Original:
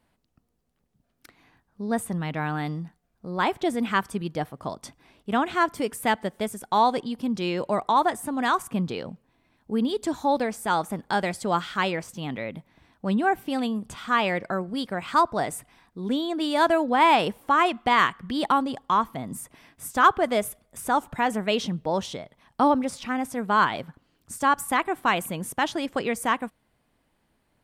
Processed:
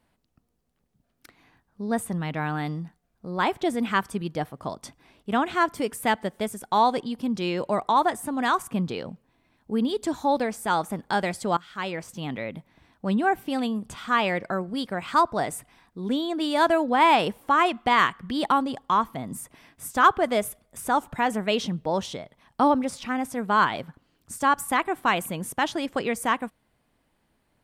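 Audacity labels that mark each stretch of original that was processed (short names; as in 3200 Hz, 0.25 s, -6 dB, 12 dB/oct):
11.570000	12.170000	fade in, from -19 dB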